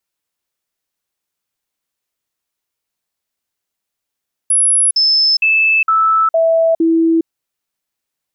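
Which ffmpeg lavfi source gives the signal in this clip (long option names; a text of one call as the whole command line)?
ffmpeg -f lavfi -i "aevalsrc='0.355*clip(min(mod(t,0.46),0.41-mod(t,0.46))/0.005,0,1)*sin(2*PI*10500*pow(2,-floor(t/0.46)/1)*mod(t,0.46))':duration=2.76:sample_rate=44100" out.wav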